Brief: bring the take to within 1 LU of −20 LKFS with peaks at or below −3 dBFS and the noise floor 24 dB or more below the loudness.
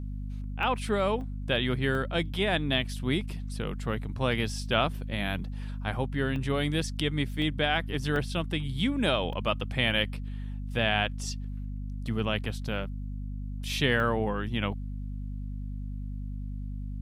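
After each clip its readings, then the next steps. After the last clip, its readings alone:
number of dropouts 8; longest dropout 1.1 ms; mains hum 50 Hz; hum harmonics up to 250 Hz; level of the hum −33 dBFS; integrated loudness −30.5 LKFS; sample peak −11.0 dBFS; target loudness −20.0 LKFS
→ repair the gap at 0:00.63/0:01.21/0:01.95/0:06.36/0:07.42/0:08.16/0:09.33/0:14.00, 1.1 ms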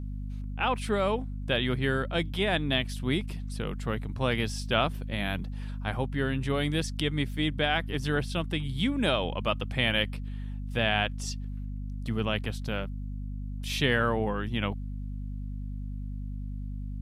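number of dropouts 0; mains hum 50 Hz; hum harmonics up to 250 Hz; level of the hum −33 dBFS
→ hum removal 50 Hz, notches 5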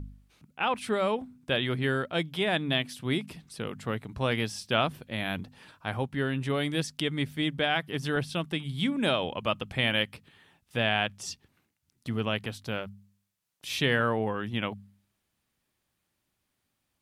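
mains hum none found; integrated loudness −30.0 LKFS; sample peak −11.5 dBFS; target loudness −20.0 LKFS
→ level +10 dB
brickwall limiter −3 dBFS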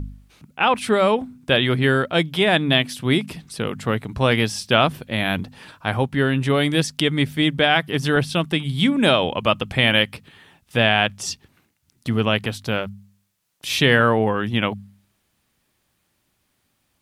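integrated loudness −20.0 LKFS; sample peak −3.0 dBFS; background noise floor −70 dBFS

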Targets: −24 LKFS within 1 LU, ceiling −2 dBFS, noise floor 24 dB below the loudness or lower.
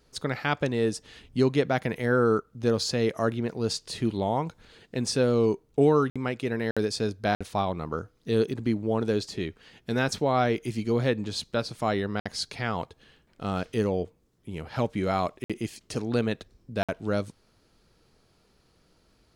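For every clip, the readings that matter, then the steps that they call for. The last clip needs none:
number of dropouts 6; longest dropout 56 ms; integrated loudness −28.0 LKFS; sample peak −10.5 dBFS; target loudness −24.0 LKFS
→ repair the gap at 0:06.10/0:06.71/0:07.35/0:12.20/0:15.44/0:16.83, 56 ms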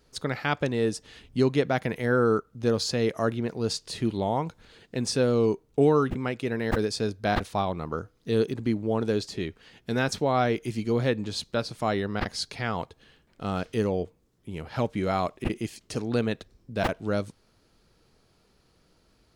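number of dropouts 0; integrated loudness −28.0 LKFS; sample peak −10.5 dBFS; target loudness −24.0 LKFS
→ level +4 dB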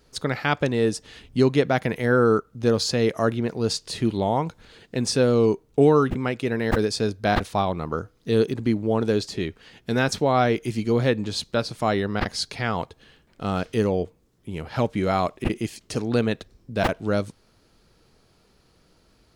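integrated loudness −24.0 LKFS; sample peak −6.5 dBFS; background noise floor −61 dBFS

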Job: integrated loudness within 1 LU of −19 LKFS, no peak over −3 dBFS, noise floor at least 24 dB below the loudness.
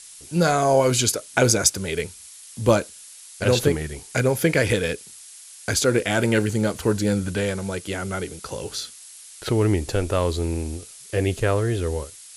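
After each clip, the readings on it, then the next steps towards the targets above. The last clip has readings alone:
background noise floor −44 dBFS; target noise floor −47 dBFS; integrated loudness −22.5 LKFS; sample peak −2.5 dBFS; target loudness −19.0 LKFS
→ noise reduction from a noise print 6 dB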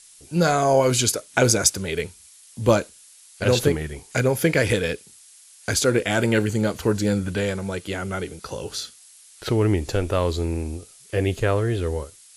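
background noise floor −50 dBFS; integrated loudness −22.5 LKFS; sample peak −2.5 dBFS; target loudness −19.0 LKFS
→ level +3.5 dB
brickwall limiter −3 dBFS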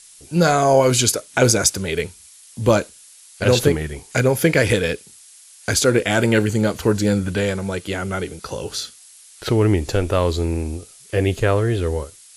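integrated loudness −19.5 LKFS; sample peak −3.0 dBFS; background noise floor −46 dBFS

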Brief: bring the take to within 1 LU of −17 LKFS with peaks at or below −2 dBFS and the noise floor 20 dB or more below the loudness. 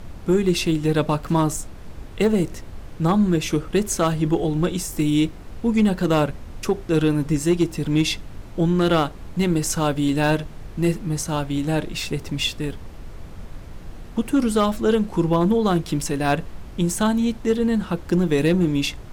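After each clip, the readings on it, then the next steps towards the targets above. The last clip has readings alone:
share of clipped samples 0.5%; peaks flattened at −11.0 dBFS; background noise floor −38 dBFS; target noise floor −42 dBFS; integrated loudness −22.0 LKFS; sample peak −11.0 dBFS; target loudness −17.0 LKFS
→ clipped peaks rebuilt −11 dBFS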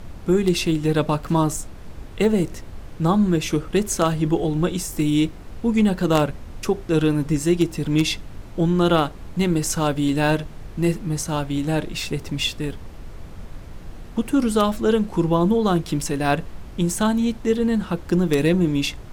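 share of clipped samples 0.0%; background noise floor −38 dBFS; target noise floor −42 dBFS
→ noise reduction from a noise print 6 dB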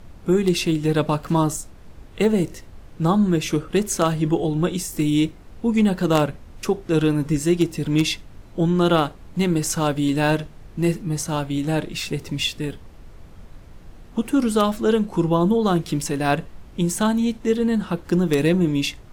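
background noise floor −44 dBFS; integrated loudness −21.5 LKFS; sample peak −2.0 dBFS; target loudness −17.0 LKFS
→ level +4.5 dB
brickwall limiter −2 dBFS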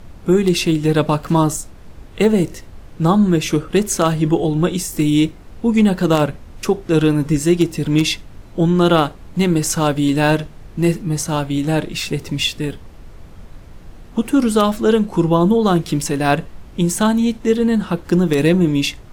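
integrated loudness −17.5 LKFS; sample peak −2.0 dBFS; background noise floor −39 dBFS

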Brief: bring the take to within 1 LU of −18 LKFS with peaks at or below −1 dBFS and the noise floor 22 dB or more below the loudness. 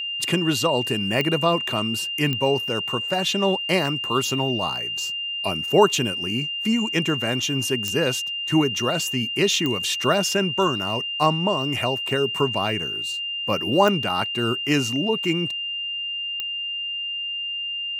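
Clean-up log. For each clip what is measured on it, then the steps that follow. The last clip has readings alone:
number of clicks 6; interfering tone 2,800 Hz; level of the tone −26 dBFS; integrated loudness −22.5 LKFS; sample peak −4.0 dBFS; target loudness −18.0 LKFS
→ click removal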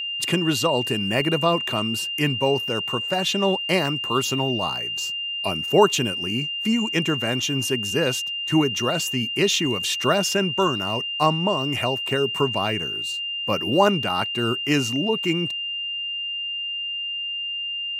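number of clicks 0; interfering tone 2,800 Hz; level of the tone −26 dBFS
→ notch filter 2,800 Hz, Q 30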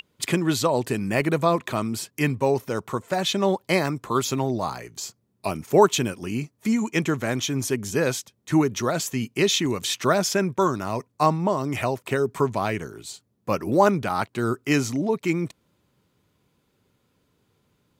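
interfering tone none found; integrated loudness −24.0 LKFS; sample peak −4.0 dBFS; target loudness −18.0 LKFS
→ level +6 dB
brickwall limiter −1 dBFS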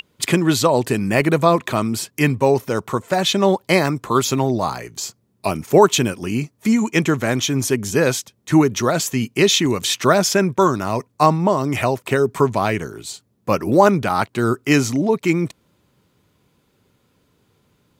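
integrated loudness −18.5 LKFS; sample peak −1.0 dBFS; background noise floor −64 dBFS

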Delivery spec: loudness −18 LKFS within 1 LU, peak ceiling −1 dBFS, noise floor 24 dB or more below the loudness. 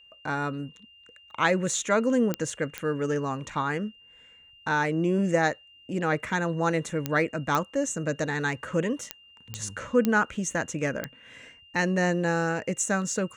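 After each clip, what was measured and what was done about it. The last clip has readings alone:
number of clicks 8; interfering tone 2,800 Hz; level of the tone −52 dBFS; integrated loudness −27.5 LKFS; sample peak −7.0 dBFS; target loudness −18.0 LKFS
→ click removal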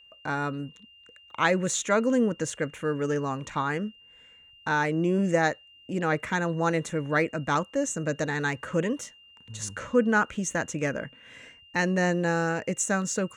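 number of clicks 0; interfering tone 2,800 Hz; level of the tone −52 dBFS
→ notch filter 2,800 Hz, Q 30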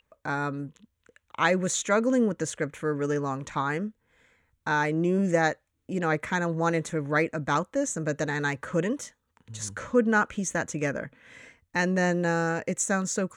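interfering tone none found; integrated loudness −27.5 LKFS; sample peak −9.5 dBFS; target loudness −18.0 LKFS
→ level +9.5 dB
brickwall limiter −1 dBFS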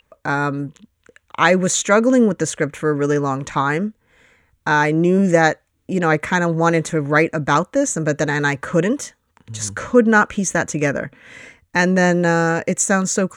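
integrated loudness −18.0 LKFS; sample peak −1.0 dBFS; background noise floor −67 dBFS

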